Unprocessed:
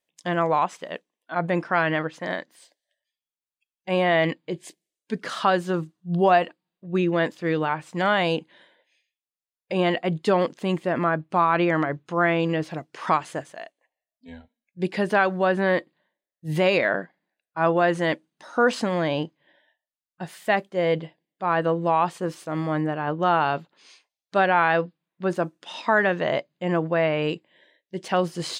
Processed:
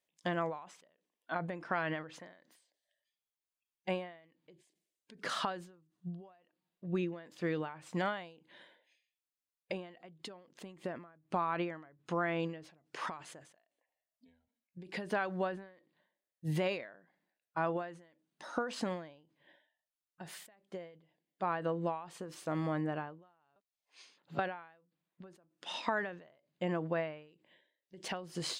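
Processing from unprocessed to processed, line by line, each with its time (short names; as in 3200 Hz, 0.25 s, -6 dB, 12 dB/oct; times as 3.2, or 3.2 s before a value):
23.56–24.39 reverse
whole clip: compressor 4:1, threshold -28 dBFS; ending taper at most 100 dB/s; gain -3.5 dB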